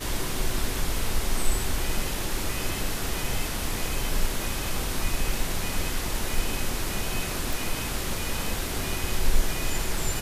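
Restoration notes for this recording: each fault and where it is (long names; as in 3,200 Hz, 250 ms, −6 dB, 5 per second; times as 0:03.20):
0:07.53: click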